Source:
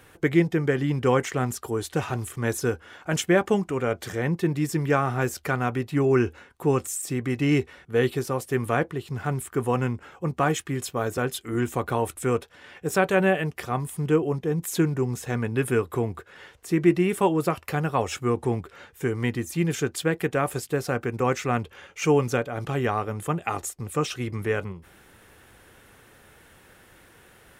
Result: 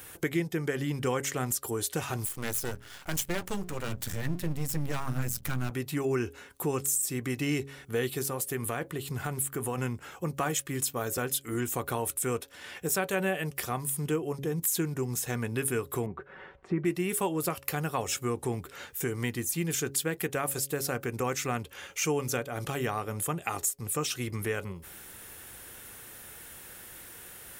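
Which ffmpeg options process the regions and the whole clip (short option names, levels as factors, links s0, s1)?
-filter_complex "[0:a]asettb=1/sr,asplit=3[s0][s1][s2];[s0]atrim=end=2.254[s3];[s1]atrim=start=2.25:end=5.71,asetpts=PTS-STARTPTS,afade=t=in:d=0.004:c=qsin,afade=t=out:st=3.456:d=0.004:c=qsin,bandreject=f=60:t=h:w=6,bandreject=f=120:t=h:w=6,bandreject=f=180:t=h:w=6,asubboost=boost=11:cutoff=140,aeval=exprs='max(val(0),0)':c=same[s4];[s2]atrim=start=5.706[s5];[s3][s4]acrossfade=d=0.004:c1=hsin:c2=qsin[s6];[s6][s5]acrossfade=d=0.004:c1=qsin:c2=hsin,asettb=1/sr,asplit=3[s7][s8][s9];[s7]atrim=end=8.224[s10];[s8]atrim=start=8.22:end=9.78,asetpts=PTS-STARTPTS,afade=t=in:d=0.004:c=qsin,afade=t=out:st=1.556:d=0.004:c=qsin,equalizer=f=5500:w=3.7:g=-4,acompressor=threshold=0.0501:ratio=2:attack=3.2:release=140:knee=1:detection=peak[s11];[s9]atrim=start=9.776[s12];[s10][s11]acrossfade=d=0.004:c1=hsin:c2=qsin[s13];[s13][s12]acrossfade=d=0.004:c1=qsin:c2=hsin,asettb=1/sr,asplit=3[s14][s15][s16];[s14]atrim=end=16.064[s17];[s15]atrim=start=16.06:end=16.85,asetpts=PTS-STARTPTS,afade=t=in:d=0.004:c=qsin,afade=t=out:st=0.786:d=0.004:c=qsin,lowpass=1700,aemphasis=mode=reproduction:type=75fm,aecho=1:1:5.3:0.48,atrim=end_sample=34839[s18];[s16]atrim=start=16.846[s19];[s17][s18]acrossfade=d=0.004:c1=hsin:c2=qsin[s20];[s20][s19]acrossfade=d=0.004:c1=qsin:c2=hsin,aemphasis=mode=production:type=75kf,bandreject=f=138:t=h:w=4,bandreject=f=276:t=h:w=4,bandreject=f=414:t=h:w=4,bandreject=f=552:t=h:w=4,acompressor=threshold=0.0224:ratio=2"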